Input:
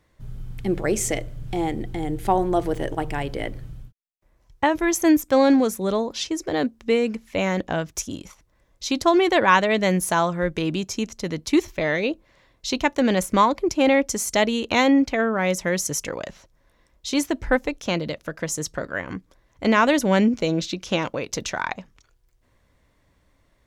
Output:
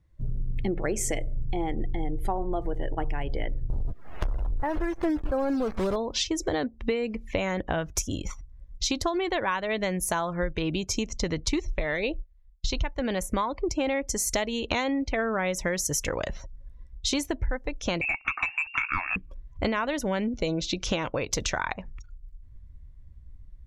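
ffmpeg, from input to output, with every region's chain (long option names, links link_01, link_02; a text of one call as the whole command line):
ffmpeg -i in.wav -filter_complex "[0:a]asettb=1/sr,asplit=3[link_01][link_02][link_03];[link_01]atrim=end=3.704[link_04];[link_02]atrim=start=3.7:end=5.96,asetpts=PTS-STARTPTS,afade=type=in:duration=0.004:curve=qsin,afade=type=out:start_time=2.256:duration=0.004:curve=qsin,aeval=exprs='val(0)+0.5*0.0668*sgn(val(0))':channel_layout=same,lowpass=1600,acrusher=bits=6:dc=4:mix=0:aa=0.000001[link_05];[link_03]atrim=start=5.956[link_06];[link_04][link_05]acrossfade=duration=0.004:curve1=hsin:curve2=qsin[link_07];[link_07][link_06]acrossfade=duration=0.004:curve1=qsin:curve2=hsin,asettb=1/sr,asplit=3[link_08][link_09][link_10];[link_08]atrim=end=11.184[link_11];[link_09]atrim=start=11.18:end=13,asetpts=PTS-STARTPTS,afade=type=in:duration=0.004:curve=qsin,afade=type=out:start_time=1.816:duration=0.004:curve=qsin,lowpass=8600,agate=range=-33dB:threshold=-46dB:ratio=3:release=100:detection=peak,asubboost=boost=9.5:cutoff=82[link_12];[link_10]atrim=start=12.996[link_13];[link_11][link_12]acrossfade=duration=0.004:curve1=hsin:curve2=qsin[link_14];[link_14][link_13]acrossfade=duration=0.004:curve1=qsin:curve2=hsin,asettb=1/sr,asplit=3[link_15][link_16][link_17];[link_15]atrim=end=18.014[link_18];[link_16]atrim=start=18.01:end=19.16,asetpts=PTS-STARTPTS,afade=type=in:duration=0.004:curve=qsin,afade=type=out:start_time=1.146:duration=0.004:curve=qsin,lowpass=frequency=2400:width_type=q:width=0.5098,lowpass=frequency=2400:width_type=q:width=0.6013,lowpass=frequency=2400:width_type=q:width=0.9,lowpass=frequency=2400:width_type=q:width=2.563,afreqshift=-2800,asplit=2[link_19][link_20];[link_20]highpass=frequency=720:poles=1,volume=14dB,asoftclip=type=tanh:threshold=-11.5dB[link_21];[link_19][link_21]amix=inputs=2:normalize=0,lowpass=frequency=1600:poles=1,volume=-6dB,lowshelf=frequency=350:width_type=q:width=3:gain=6[link_22];[link_17]atrim=start=19.156[link_23];[link_18][link_22]acrossfade=duration=0.004:curve1=hsin:curve2=qsin[link_24];[link_24][link_23]acrossfade=duration=0.004:curve1=qsin:curve2=hsin,asubboost=boost=5:cutoff=80,acompressor=threshold=-31dB:ratio=12,afftdn=noise_reduction=21:noise_floor=-53,volume=7dB" out.wav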